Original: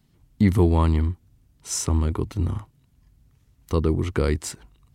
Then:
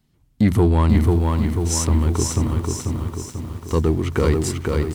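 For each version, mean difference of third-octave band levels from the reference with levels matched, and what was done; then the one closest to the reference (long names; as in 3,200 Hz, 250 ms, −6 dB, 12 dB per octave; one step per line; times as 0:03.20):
6.0 dB: hum removal 46.14 Hz, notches 4
leveller curve on the samples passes 1
single-tap delay 573 ms −14.5 dB
feedback echo at a low word length 491 ms, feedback 55%, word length 8 bits, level −3 dB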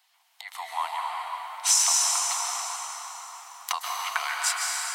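22.5 dB: downward compressor 5 to 1, threshold −35 dBFS, peak gain reduction 19 dB
Chebyshev high-pass with heavy ripple 690 Hz, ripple 3 dB
automatic gain control gain up to 10 dB
dense smooth reverb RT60 4.7 s, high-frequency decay 0.7×, pre-delay 115 ms, DRR −2.5 dB
level +8 dB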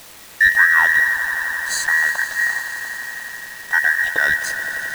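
16.5 dB: frequency inversion band by band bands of 2,000 Hz
echo that builds up and dies away 87 ms, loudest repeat 5, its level −14.5 dB
background noise blue −39 dBFS
slack as between gear wheels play −32.5 dBFS
level +4 dB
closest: first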